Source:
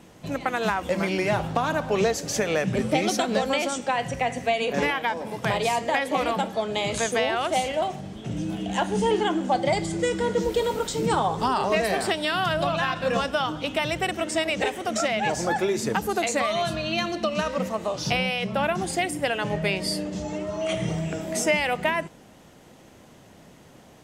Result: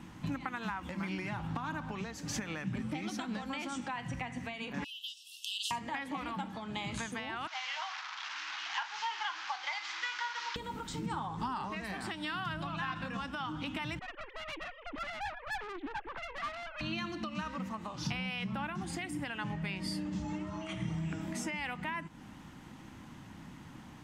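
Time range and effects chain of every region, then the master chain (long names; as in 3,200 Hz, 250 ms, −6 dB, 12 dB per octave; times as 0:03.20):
0:04.84–0:05.71: linear-phase brick-wall high-pass 2,600 Hz + spectral tilt +1.5 dB per octave + highs frequency-modulated by the lows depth 0.57 ms
0:07.47–0:10.56: linear delta modulator 32 kbit/s, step −29 dBFS + high-pass filter 980 Hz 24 dB per octave + double-tracking delay 36 ms −13 dB
0:13.99–0:16.81: three sine waves on the formant tracks + tube saturation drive 32 dB, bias 0.75 + highs frequency-modulated by the lows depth 0.22 ms
whole clip: high-shelf EQ 3,800 Hz −11 dB; downward compressor, threshold −35 dBFS; flat-topped bell 520 Hz −13.5 dB 1.1 octaves; level +2.5 dB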